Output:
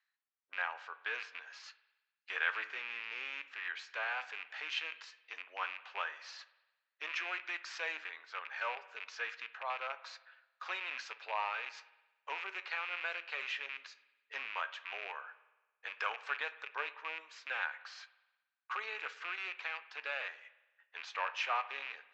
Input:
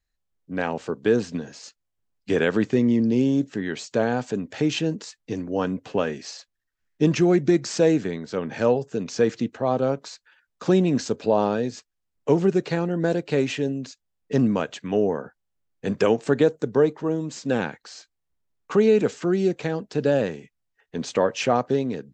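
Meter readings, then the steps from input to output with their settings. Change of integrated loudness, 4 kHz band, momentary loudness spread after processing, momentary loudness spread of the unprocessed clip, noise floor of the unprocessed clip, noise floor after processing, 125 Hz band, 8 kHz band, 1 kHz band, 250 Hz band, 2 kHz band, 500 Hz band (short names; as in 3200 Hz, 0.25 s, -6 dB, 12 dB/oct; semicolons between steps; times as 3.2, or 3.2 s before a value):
-16.0 dB, -8.0 dB, 12 LU, 13 LU, -78 dBFS, under -85 dBFS, under -40 dB, -20.5 dB, -9.5 dB, under -40 dB, -2.5 dB, -29.5 dB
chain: rattling part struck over -29 dBFS, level -23 dBFS; high shelf 4400 Hz -10.5 dB; reverse; upward compressor, threshold -37 dBFS; reverse; flange 0.11 Hz, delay 4.5 ms, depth 8 ms, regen +77%; HPF 1100 Hz 24 dB/oct; air absorption 180 m; spring tank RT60 1.1 s, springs 55 ms, chirp 50 ms, DRR 15 dB; gain +3 dB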